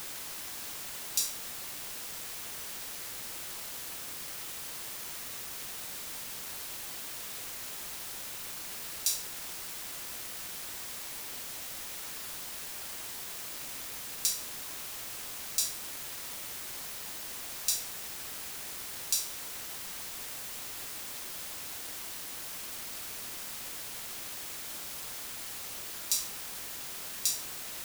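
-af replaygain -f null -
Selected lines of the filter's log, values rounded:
track_gain = +26.4 dB
track_peak = 0.300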